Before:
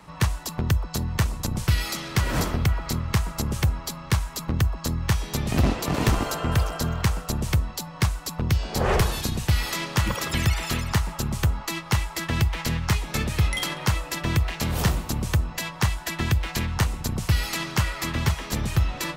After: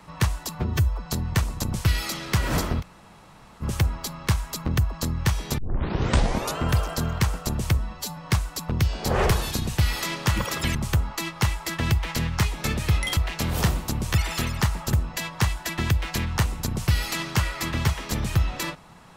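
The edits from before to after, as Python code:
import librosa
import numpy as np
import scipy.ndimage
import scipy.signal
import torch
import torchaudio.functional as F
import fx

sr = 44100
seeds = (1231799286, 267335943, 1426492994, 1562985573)

y = fx.edit(x, sr, fx.stretch_span(start_s=0.55, length_s=0.34, factor=1.5),
    fx.room_tone_fill(start_s=2.64, length_s=0.81, crossfade_s=0.04),
    fx.tape_start(start_s=5.41, length_s=1.01),
    fx.stretch_span(start_s=7.61, length_s=0.26, factor=1.5),
    fx.move(start_s=10.45, length_s=0.8, to_s=15.34),
    fx.cut(start_s=13.67, length_s=0.71), tone=tone)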